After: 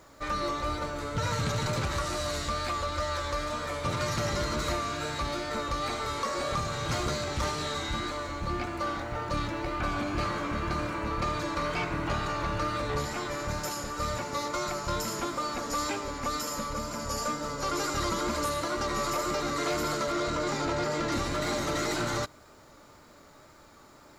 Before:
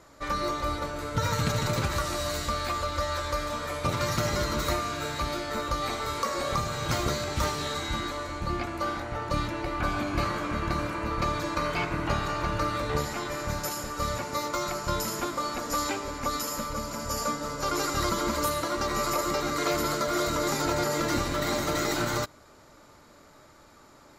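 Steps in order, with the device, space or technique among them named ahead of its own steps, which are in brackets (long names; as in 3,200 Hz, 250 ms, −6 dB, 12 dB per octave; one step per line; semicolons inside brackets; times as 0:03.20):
0:20.12–0:21.12: high-frequency loss of the air 65 metres
compact cassette (soft clipping −23 dBFS, distortion −16 dB; low-pass filter 10,000 Hz 12 dB per octave; tape wow and flutter 29 cents; white noise bed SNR 40 dB)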